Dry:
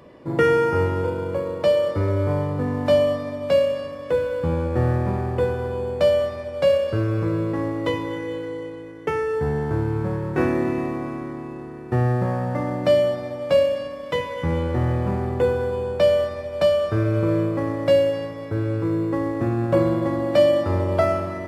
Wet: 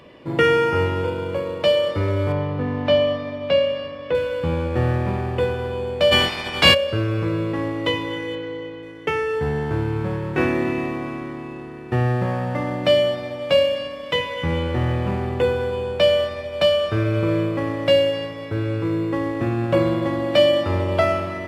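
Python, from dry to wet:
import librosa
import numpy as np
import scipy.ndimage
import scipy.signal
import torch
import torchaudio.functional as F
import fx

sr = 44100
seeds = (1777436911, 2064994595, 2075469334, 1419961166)

y = fx.air_absorb(x, sr, metres=150.0, at=(2.32, 4.15))
y = fx.spec_clip(y, sr, under_db=27, at=(6.11, 6.73), fade=0.02)
y = fx.air_absorb(y, sr, metres=100.0, at=(8.35, 8.83))
y = fx.peak_eq(y, sr, hz=2900.0, db=10.5, octaves=1.1)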